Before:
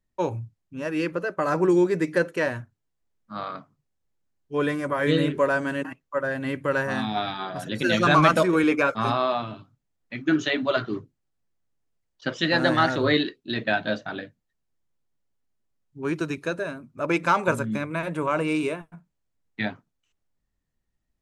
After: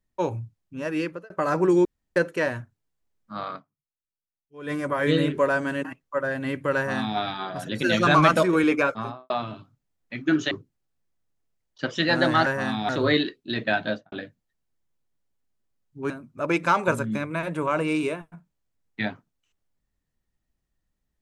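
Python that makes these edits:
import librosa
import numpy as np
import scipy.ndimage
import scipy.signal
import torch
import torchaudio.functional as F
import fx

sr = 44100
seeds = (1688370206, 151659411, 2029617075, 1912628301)

y = fx.studio_fade_out(x, sr, start_s=8.79, length_s=0.51)
y = fx.studio_fade_out(y, sr, start_s=13.86, length_s=0.26)
y = fx.edit(y, sr, fx.fade_out_span(start_s=0.97, length_s=0.33),
    fx.room_tone_fill(start_s=1.85, length_s=0.31),
    fx.fade_down_up(start_s=3.55, length_s=1.17, db=-21.0, fade_s=0.48, curve='exp'),
    fx.duplicate(start_s=6.76, length_s=0.43, to_s=12.89),
    fx.cut(start_s=10.51, length_s=0.43),
    fx.cut(start_s=16.1, length_s=0.6), tone=tone)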